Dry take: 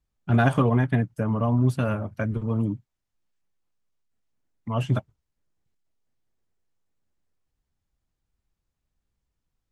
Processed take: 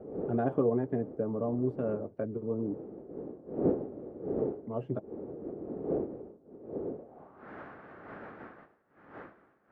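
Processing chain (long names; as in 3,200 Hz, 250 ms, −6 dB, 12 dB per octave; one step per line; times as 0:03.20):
wind on the microphone 320 Hz −32 dBFS
notch filter 980 Hz, Q 15
in parallel at −2 dB: downward compressor, threshold −33 dBFS, peak gain reduction 17.5 dB
on the sum: high-shelf EQ 2,900 Hz −11.5 dB
band-pass filter sweep 420 Hz → 1,600 Hz, 0:06.91–0:07.49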